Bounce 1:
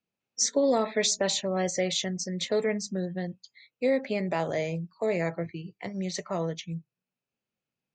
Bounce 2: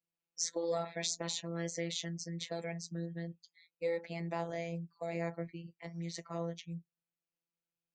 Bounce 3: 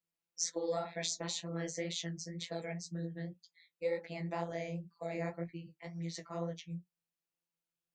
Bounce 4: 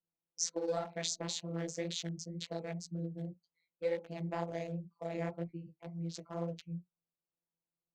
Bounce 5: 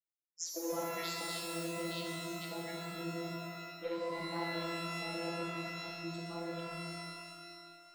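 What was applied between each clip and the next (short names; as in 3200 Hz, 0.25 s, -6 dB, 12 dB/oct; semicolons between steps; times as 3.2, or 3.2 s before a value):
robotiser 168 Hz; gain -7.5 dB
flange 2 Hz, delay 9.9 ms, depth 7.4 ms, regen -30%; gain +3 dB
Wiener smoothing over 25 samples; gain +1 dB
bin magnitudes rounded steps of 30 dB; spectral noise reduction 15 dB; shimmer reverb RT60 2.1 s, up +12 st, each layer -2 dB, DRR -0.5 dB; gain -5.5 dB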